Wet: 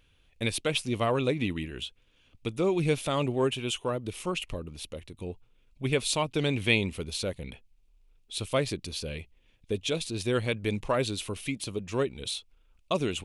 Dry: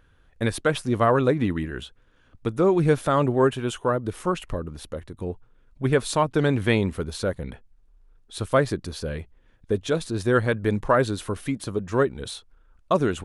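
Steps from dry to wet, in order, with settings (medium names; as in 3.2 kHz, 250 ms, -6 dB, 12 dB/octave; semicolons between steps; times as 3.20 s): resonant high shelf 2 kHz +7 dB, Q 3; trim -6.5 dB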